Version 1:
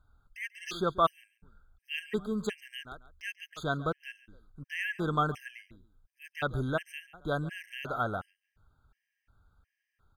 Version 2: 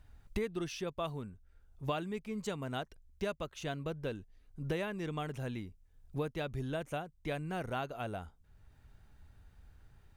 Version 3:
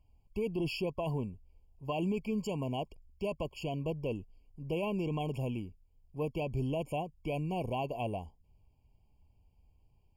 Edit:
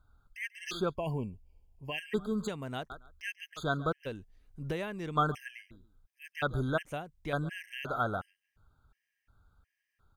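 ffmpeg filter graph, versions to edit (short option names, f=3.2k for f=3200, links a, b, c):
-filter_complex "[1:a]asplit=3[a][b][c];[0:a]asplit=5[d][e][f][g][h];[d]atrim=end=0.96[i];[2:a]atrim=start=0.8:end=2[j];[e]atrim=start=1.84:end=2.482[k];[a]atrim=start=2.478:end=2.902[l];[f]atrim=start=2.898:end=4.07[m];[b]atrim=start=4.05:end=5.17[n];[g]atrim=start=5.15:end=6.852[o];[c]atrim=start=6.848:end=7.332[p];[h]atrim=start=7.328[q];[i][j]acrossfade=d=0.16:c1=tri:c2=tri[r];[r][k]acrossfade=d=0.16:c1=tri:c2=tri[s];[s][l]acrossfade=d=0.004:c1=hsin:c2=hsin[t];[t][m]acrossfade=d=0.004:c1=hsin:c2=hsin[u];[u][n]acrossfade=d=0.02:c1=tri:c2=tri[v];[v][o]acrossfade=d=0.02:c1=tri:c2=tri[w];[w][p]acrossfade=d=0.004:c1=hsin:c2=hsin[x];[x][q]acrossfade=d=0.004:c1=hsin:c2=hsin"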